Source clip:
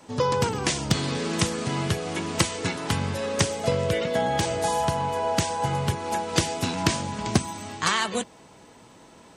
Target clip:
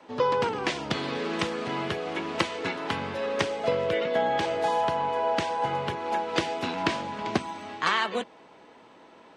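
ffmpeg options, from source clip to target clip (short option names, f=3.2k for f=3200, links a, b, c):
-filter_complex "[0:a]acrossover=split=240 4000:gain=0.178 1 0.0891[a][b][c];[a][b][c]amix=inputs=3:normalize=0"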